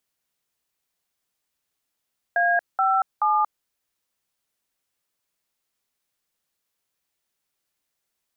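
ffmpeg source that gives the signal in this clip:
-f lavfi -i "aevalsrc='0.1*clip(min(mod(t,0.428),0.232-mod(t,0.428))/0.002,0,1)*(eq(floor(t/0.428),0)*(sin(2*PI*697*mod(t,0.428))+sin(2*PI*1633*mod(t,0.428)))+eq(floor(t/0.428),1)*(sin(2*PI*770*mod(t,0.428))+sin(2*PI*1336*mod(t,0.428)))+eq(floor(t/0.428),2)*(sin(2*PI*852*mod(t,0.428))+sin(2*PI*1209*mod(t,0.428))))':d=1.284:s=44100"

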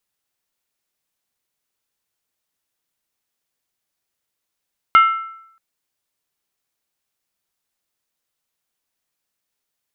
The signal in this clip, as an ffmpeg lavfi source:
-f lavfi -i "aevalsrc='0.562*pow(10,-3*t/0.74)*sin(2*PI*1330*t)+0.2*pow(10,-3*t/0.586)*sin(2*PI*2120*t)+0.0708*pow(10,-3*t/0.506)*sin(2*PI*2840.9*t)+0.0251*pow(10,-3*t/0.488)*sin(2*PI*3053.7*t)+0.00891*pow(10,-3*t/0.454)*sin(2*PI*3528.5*t)':d=0.63:s=44100"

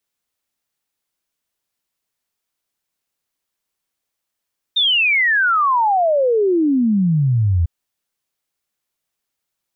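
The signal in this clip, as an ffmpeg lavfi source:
-f lavfi -i "aevalsrc='0.237*clip(min(t,2.9-t)/0.01,0,1)*sin(2*PI*3700*2.9/log(80/3700)*(exp(log(80/3700)*t/2.9)-1))':d=2.9:s=44100"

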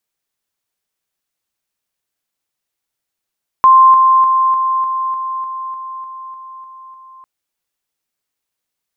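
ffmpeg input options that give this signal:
-f lavfi -i "aevalsrc='pow(10,(-3.5-3*floor(t/0.3))/20)*sin(2*PI*1050*t)':d=3.6:s=44100"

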